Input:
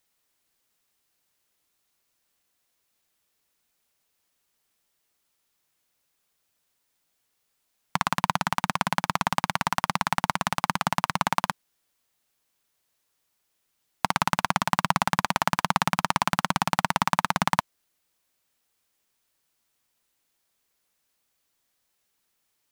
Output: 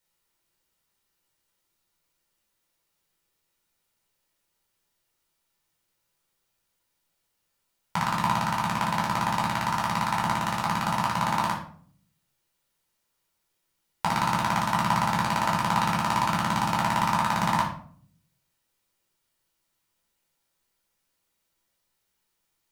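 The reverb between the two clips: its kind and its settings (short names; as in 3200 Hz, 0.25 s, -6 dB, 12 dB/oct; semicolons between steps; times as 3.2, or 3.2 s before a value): shoebox room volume 590 m³, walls furnished, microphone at 4.6 m; gain -7.5 dB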